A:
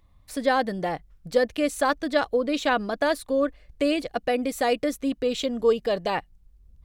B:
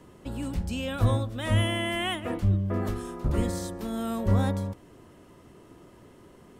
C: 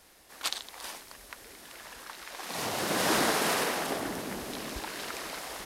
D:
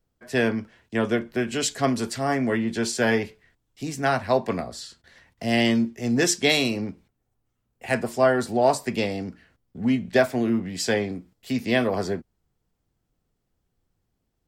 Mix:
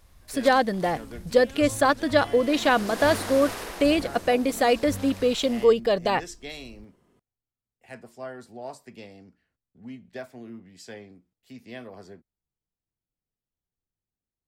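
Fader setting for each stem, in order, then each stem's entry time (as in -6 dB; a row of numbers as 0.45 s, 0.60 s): +2.5 dB, -13.0 dB, -7.0 dB, -18.5 dB; 0.00 s, 0.60 s, 0.00 s, 0.00 s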